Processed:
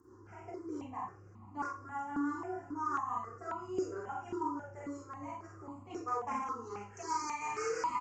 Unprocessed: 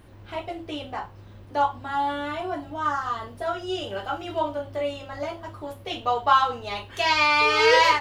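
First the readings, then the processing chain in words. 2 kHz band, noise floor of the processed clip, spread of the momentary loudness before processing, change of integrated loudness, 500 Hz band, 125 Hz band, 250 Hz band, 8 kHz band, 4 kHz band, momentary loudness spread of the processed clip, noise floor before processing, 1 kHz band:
-21.5 dB, -55 dBFS, 17 LU, -15.0 dB, -15.0 dB, -11.5 dB, -5.0 dB, -7.5 dB, -28.5 dB, 11 LU, -46 dBFS, -13.5 dB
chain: one-sided wavefolder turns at -17 dBFS; compression 6:1, threshold -23 dBFS, peak gain reduction 9 dB; high-pass 200 Hz 12 dB/octave; echo from a far wall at 73 m, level -20 dB; resampled via 16 kHz; high-order bell 2.5 kHz -15.5 dB; static phaser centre 1.5 kHz, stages 4; comb 2.9 ms, depth 36%; rotary cabinet horn 6 Hz; Schroeder reverb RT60 0.36 s, combs from 31 ms, DRR -1.5 dB; stepped phaser 3.7 Hz 660–1600 Hz; trim +1 dB

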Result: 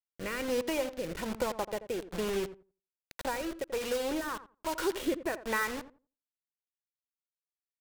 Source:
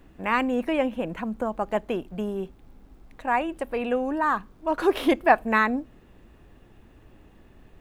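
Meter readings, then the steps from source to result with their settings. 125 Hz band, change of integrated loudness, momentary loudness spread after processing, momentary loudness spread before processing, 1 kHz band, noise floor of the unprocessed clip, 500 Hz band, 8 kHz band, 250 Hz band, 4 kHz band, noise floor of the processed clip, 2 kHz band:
-7.0 dB, -8.5 dB, 7 LU, 11 LU, -13.0 dB, -54 dBFS, -6.5 dB, no reading, -9.5 dB, -1.5 dB, under -85 dBFS, -9.0 dB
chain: comb 2.1 ms, depth 51%; compression 2.5:1, threshold -30 dBFS, peak gain reduction 11.5 dB; bit crusher 6-bit; rotary cabinet horn 1.2 Hz; on a send: filtered feedback delay 85 ms, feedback 20%, low-pass 1.2 kHz, level -12 dB

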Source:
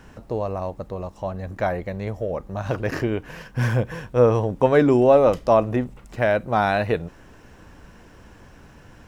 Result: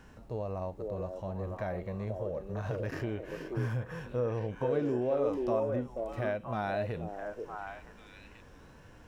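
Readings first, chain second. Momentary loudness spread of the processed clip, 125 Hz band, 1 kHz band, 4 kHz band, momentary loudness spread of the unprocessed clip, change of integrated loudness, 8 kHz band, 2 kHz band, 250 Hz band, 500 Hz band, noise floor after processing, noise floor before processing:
12 LU, -10.5 dB, -14.5 dB, under -10 dB, 15 LU, -13.0 dB, no reading, -13.5 dB, -12.0 dB, -12.5 dB, -54 dBFS, -48 dBFS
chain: harmonic-percussive split percussive -11 dB; compression 2.5:1, threshold -29 dBFS, peak gain reduction 11.5 dB; repeats whose band climbs or falls 483 ms, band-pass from 420 Hz, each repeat 1.4 oct, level 0 dB; trim -4.5 dB

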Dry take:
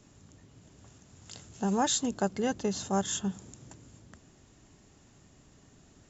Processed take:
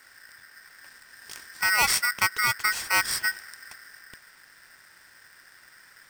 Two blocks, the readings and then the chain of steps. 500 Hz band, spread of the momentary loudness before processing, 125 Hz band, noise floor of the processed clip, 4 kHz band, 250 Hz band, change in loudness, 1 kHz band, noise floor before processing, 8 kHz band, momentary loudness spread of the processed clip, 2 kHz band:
-11.0 dB, 21 LU, -8.0 dB, -55 dBFS, +9.0 dB, -18.5 dB, +7.0 dB, +5.0 dB, -60 dBFS, no reading, 21 LU, +20.5 dB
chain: polarity switched at an audio rate 1.7 kHz; trim +5 dB

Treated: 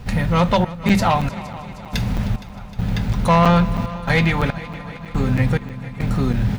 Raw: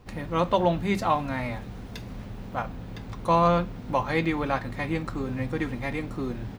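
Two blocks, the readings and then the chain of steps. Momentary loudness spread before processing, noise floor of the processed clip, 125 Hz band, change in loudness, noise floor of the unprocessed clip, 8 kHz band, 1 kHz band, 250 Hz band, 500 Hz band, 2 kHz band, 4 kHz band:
16 LU, -36 dBFS, +12.5 dB, +7.5 dB, -40 dBFS, no reading, +5.0 dB, +9.0 dB, +3.5 dB, +8.5 dB, +10.0 dB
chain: in parallel at +1 dB: compression, threshold -32 dBFS, peak gain reduction 14.5 dB; on the sum: FFT filter 210 Hz 0 dB, 370 Hz -8 dB, 1.6 kHz -3 dB; sine folder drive 11 dB, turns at -5.5 dBFS; trance gate "xxx.xx...xx..xx" 70 bpm -24 dB; peaking EQ 310 Hz -13.5 dB 0.25 oct; band-stop 1.1 kHz, Q 10; multi-head delay 155 ms, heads second and third, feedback 65%, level -18 dB; crackling interface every 0.32 s, samples 256, zero, from 0.89 s; trim -3 dB

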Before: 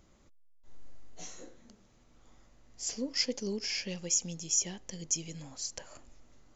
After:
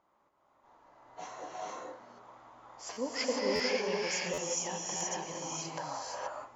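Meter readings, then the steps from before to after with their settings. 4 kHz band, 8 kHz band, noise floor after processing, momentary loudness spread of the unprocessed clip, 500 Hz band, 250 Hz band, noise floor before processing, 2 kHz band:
-2.0 dB, no reading, -71 dBFS, 17 LU, +8.5 dB, -0.5 dB, -63 dBFS, +7.0 dB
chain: level rider gain up to 12 dB; band-pass filter 950 Hz, Q 2.9; gated-style reverb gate 500 ms rising, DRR -4 dB; buffer glitch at 2.92/3.55/4.33/4.96 s, samples 512, times 3; trim +4.5 dB

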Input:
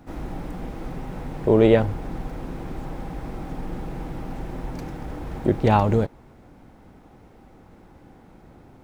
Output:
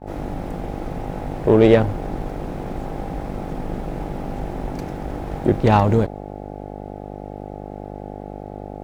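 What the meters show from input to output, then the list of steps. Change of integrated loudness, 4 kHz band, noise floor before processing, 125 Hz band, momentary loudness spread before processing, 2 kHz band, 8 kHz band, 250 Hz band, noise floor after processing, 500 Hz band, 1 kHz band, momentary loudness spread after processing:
+3.5 dB, +3.0 dB, -51 dBFS, +3.5 dB, 17 LU, +3.5 dB, no reading, +3.5 dB, -34 dBFS, +3.5 dB, +3.5 dB, 19 LU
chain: Chebyshev shaper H 8 -30 dB, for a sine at -4 dBFS; mains buzz 50 Hz, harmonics 17, -36 dBFS -1 dB/octave; expander -33 dBFS; trim +3 dB

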